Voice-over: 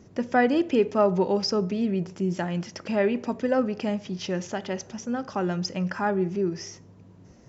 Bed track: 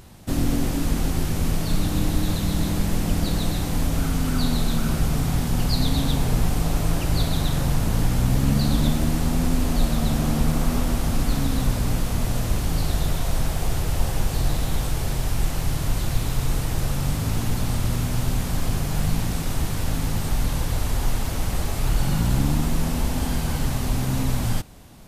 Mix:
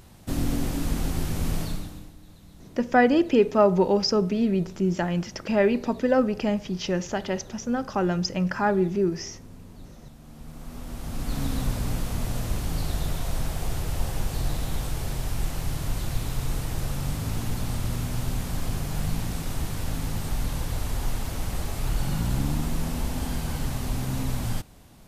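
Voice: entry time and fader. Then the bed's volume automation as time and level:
2.60 s, +2.5 dB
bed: 1.62 s -4 dB
2.16 s -26.5 dB
10.18 s -26.5 dB
11.43 s -5 dB

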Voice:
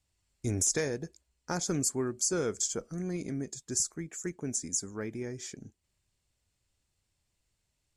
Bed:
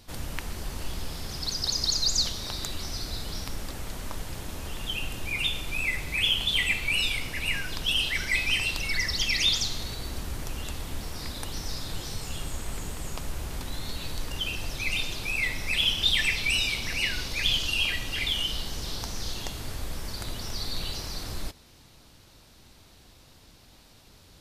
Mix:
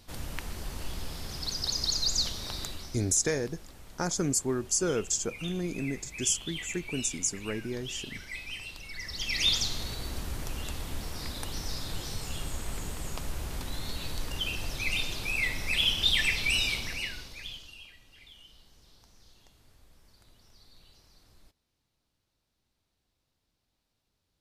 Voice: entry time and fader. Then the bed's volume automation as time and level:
2.50 s, +2.0 dB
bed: 2.62 s -3 dB
3.09 s -14 dB
8.93 s -14 dB
9.48 s -1.5 dB
16.74 s -1.5 dB
17.93 s -25.5 dB

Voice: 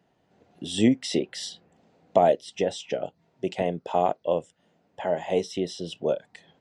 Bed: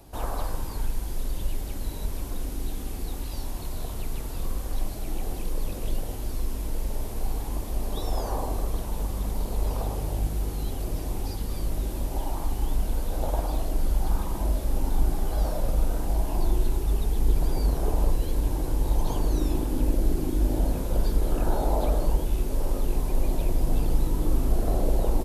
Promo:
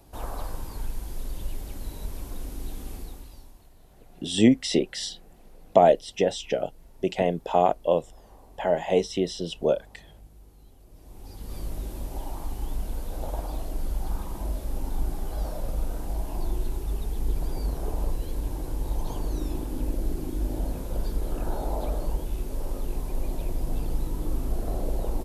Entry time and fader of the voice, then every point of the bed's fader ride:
3.60 s, +2.5 dB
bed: 2.95 s -4 dB
3.73 s -23 dB
10.87 s -23 dB
11.55 s -5 dB

